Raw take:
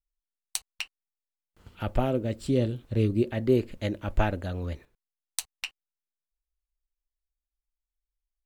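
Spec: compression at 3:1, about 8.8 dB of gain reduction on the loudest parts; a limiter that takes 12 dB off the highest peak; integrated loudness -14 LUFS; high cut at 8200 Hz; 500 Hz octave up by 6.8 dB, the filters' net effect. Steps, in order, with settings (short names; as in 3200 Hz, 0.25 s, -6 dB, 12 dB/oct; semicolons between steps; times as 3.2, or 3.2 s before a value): LPF 8200 Hz; bell 500 Hz +9 dB; compressor 3:1, threshold -25 dBFS; gain +20 dB; limiter -1.5 dBFS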